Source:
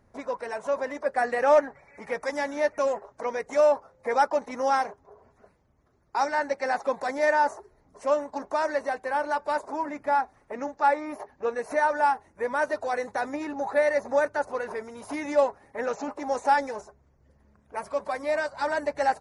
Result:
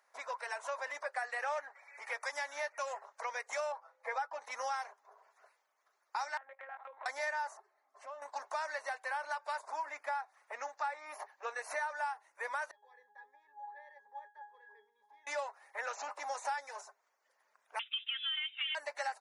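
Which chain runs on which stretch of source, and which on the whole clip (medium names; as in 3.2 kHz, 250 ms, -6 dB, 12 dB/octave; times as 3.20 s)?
3.72–4.41 s: low-pass 2.3 kHz 6 dB/octave + comb 6.2 ms, depth 45%
6.37–7.06 s: low-pass 2 kHz + monotone LPC vocoder at 8 kHz 270 Hz + compression 16:1, threshold -36 dBFS
7.57–8.22 s: low-pass 1.6 kHz 6 dB/octave + compression 4:1, threshold -36 dBFS + comb of notches 480 Hz
12.71–15.27 s: expander -44 dBFS + pitch-class resonator G#, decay 0.31 s
17.79–18.75 s: expander -38 dBFS + compression 2.5:1, threshold -27 dBFS + frequency inversion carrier 3.7 kHz
whole clip: Bessel high-pass 1.1 kHz, order 4; compression 5:1, threshold -36 dBFS; trim +1 dB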